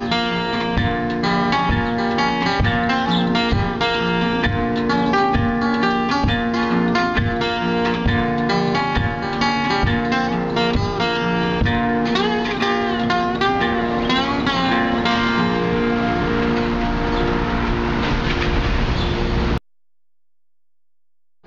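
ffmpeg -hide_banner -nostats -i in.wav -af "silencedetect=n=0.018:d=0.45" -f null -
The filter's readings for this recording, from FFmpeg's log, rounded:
silence_start: 19.58
silence_end: 21.46 | silence_duration: 1.89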